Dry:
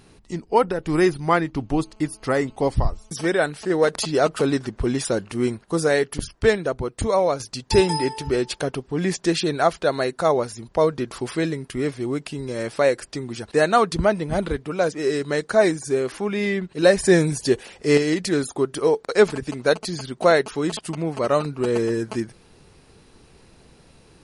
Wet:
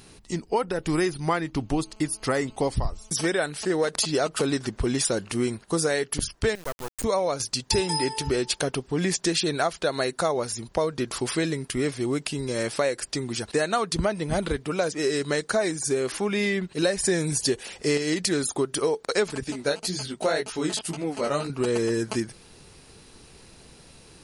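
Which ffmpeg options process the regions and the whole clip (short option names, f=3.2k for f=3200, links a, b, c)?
-filter_complex "[0:a]asettb=1/sr,asplit=3[a][b][c];[a]atrim=end=6.554[d];[b]atrim=start=6.55:end=7.04,asetpts=PTS-STARTPTS,afade=t=in:d=0.004:c=qsin,afade=t=out:st=0.486:d=0.004:c=qsin,highpass=f=630:p=1,equalizer=f=3.2k:w=0.99:g=-13.5,acrusher=bits=4:dc=4:mix=0:aa=0.000001[e];[c]atrim=start=7.036[f];[d][e]acrossfade=d=0.004:c1=hsin:c2=qsin[g];[g][f]acrossfade=d=0.004:c1=qsin:c2=hsin,asettb=1/sr,asplit=3[h][i][j];[h]atrim=end=19.444[k];[i]atrim=start=19.44:end=21.5,asetpts=PTS-STARTPTS,afade=t=in:d=0.004:c=qsin,afade=t=out:st=2.056:d=0.004:c=qsin,flanger=delay=15.5:depth=5.5:speed=1.9,bandreject=f=1.1k:w=11[l];[j]atrim=start=21.496[m];[k][l]acrossfade=d=0.004:c1=hsin:c2=qsin[n];[n][m]acrossfade=d=0.004:c1=qsin:c2=hsin,highshelf=f=3k:g=8.5,acompressor=threshold=-21dB:ratio=5"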